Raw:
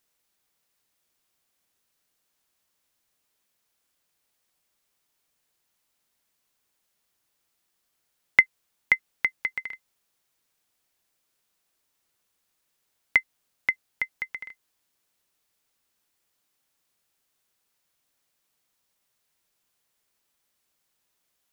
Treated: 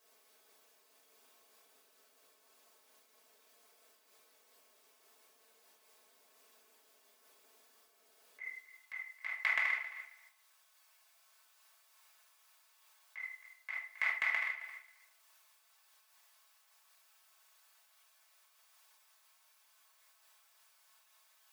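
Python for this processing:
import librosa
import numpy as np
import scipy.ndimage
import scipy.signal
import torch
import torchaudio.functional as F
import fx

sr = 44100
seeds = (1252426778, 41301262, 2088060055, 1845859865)

y = fx.tilt_shelf(x, sr, db=6.0, hz=730.0)
y = fx.over_compress(y, sr, threshold_db=-31.0, ratio=-0.5)
y = fx.highpass(y, sr, hz=fx.steps((0.0, 360.0), (8.4, 830.0)), slope=24)
y = fx.echo_feedback(y, sr, ms=268, feedback_pct=15, wet_db=-16)
y = fx.room_shoebox(y, sr, seeds[0], volume_m3=1000.0, walls='furnished', distance_m=5.5)
y = fx.transient(y, sr, attack_db=-6, sustain_db=-2)
y = y + 0.89 * np.pad(y, (int(4.6 * sr / 1000.0), 0))[:len(y)]
y = fx.am_noise(y, sr, seeds[1], hz=5.7, depth_pct=55)
y = y * 10.0 ** (2.5 / 20.0)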